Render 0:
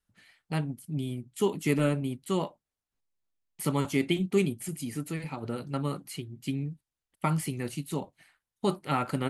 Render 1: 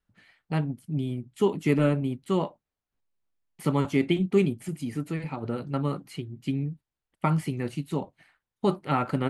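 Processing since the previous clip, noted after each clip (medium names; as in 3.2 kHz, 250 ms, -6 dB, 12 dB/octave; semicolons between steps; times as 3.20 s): low-pass 2.2 kHz 6 dB/octave; trim +3.5 dB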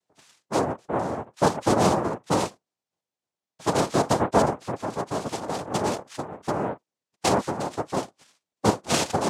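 noise-vocoded speech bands 2; trim +2 dB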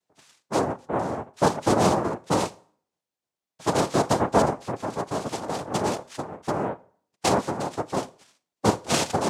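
reverberation RT60 0.50 s, pre-delay 17 ms, DRR 19 dB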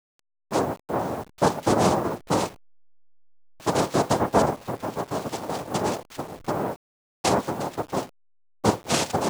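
send-on-delta sampling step -40 dBFS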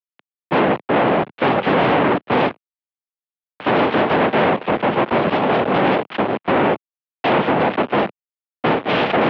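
fuzz box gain 37 dB, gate -44 dBFS; mistuned SSB -55 Hz 210–3200 Hz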